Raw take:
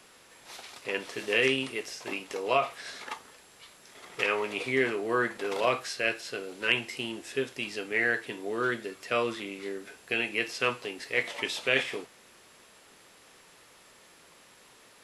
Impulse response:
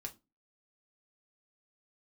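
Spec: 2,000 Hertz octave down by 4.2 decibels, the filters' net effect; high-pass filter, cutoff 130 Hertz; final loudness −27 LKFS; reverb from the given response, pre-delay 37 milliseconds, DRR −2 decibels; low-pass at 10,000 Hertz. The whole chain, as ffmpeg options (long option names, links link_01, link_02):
-filter_complex "[0:a]highpass=130,lowpass=10000,equalizer=frequency=2000:width_type=o:gain=-5.5,asplit=2[link_01][link_02];[1:a]atrim=start_sample=2205,adelay=37[link_03];[link_02][link_03]afir=irnorm=-1:irlink=0,volume=5dB[link_04];[link_01][link_04]amix=inputs=2:normalize=0,volume=1dB"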